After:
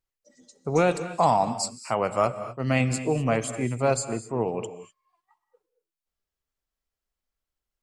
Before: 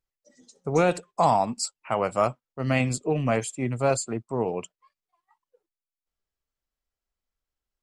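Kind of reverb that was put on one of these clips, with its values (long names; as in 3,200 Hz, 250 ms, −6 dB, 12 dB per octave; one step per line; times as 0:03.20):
reverb whose tail is shaped and stops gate 270 ms rising, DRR 11.5 dB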